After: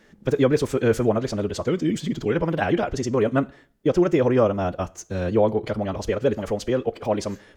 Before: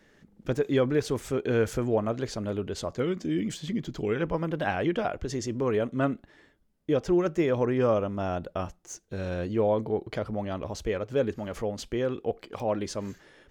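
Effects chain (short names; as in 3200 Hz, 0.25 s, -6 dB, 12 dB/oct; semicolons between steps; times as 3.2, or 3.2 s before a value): plate-style reverb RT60 0.9 s, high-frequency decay 0.95×, DRR 18 dB; time stretch by phase-locked vocoder 0.56×; gain +6.5 dB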